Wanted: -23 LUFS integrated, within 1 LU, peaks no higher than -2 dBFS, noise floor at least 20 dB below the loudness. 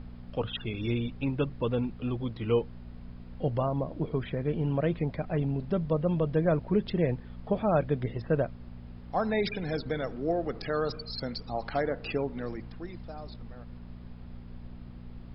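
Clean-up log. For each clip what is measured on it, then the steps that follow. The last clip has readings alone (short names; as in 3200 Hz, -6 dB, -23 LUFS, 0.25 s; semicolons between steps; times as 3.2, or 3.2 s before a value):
hum 60 Hz; harmonics up to 240 Hz; hum level -43 dBFS; noise floor -45 dBFS; noise floor target -51 dBFS; loudness -31.0 LUFS; peak -13.5 dBFS; loudness target -23.0 LUFS
-> de-hum 60 Hz, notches 4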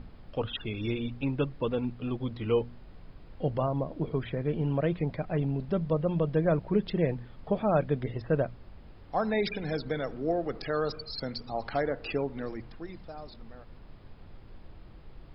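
hum none; noise floor -50 dBFS; noise floor target -51 dBFS
-> noise print and reduce 6 dB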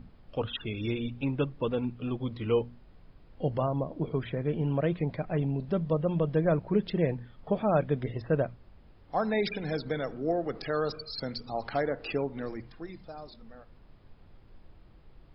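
noise floor -56 dBFS; loudness -31.0 LUFS; peak -13.5 dBFS; loudness target -23.0 LUFS
-> gain +8 dB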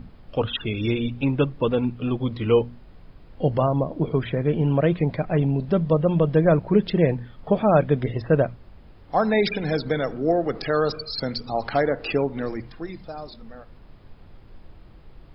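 loudness -23.0 LUFS; peak -5.5 dBFS; noise floor -48 dBFS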